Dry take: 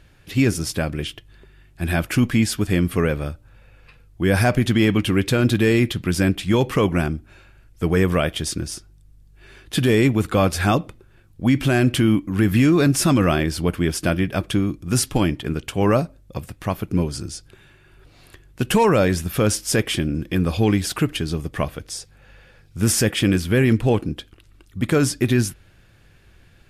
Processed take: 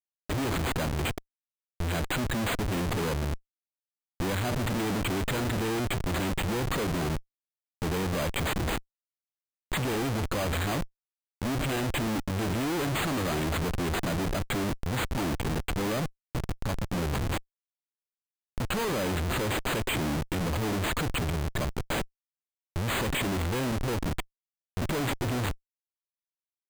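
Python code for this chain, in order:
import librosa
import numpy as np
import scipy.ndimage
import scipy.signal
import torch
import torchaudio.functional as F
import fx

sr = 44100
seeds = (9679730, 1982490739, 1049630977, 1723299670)

y = fx.schmitt(x, sr, flips_db=-29.5)
y = np.repeat(y[::8], 8)[:len(y)]
y = F.gain(torch.from_numpy(y), -7.5).numpy()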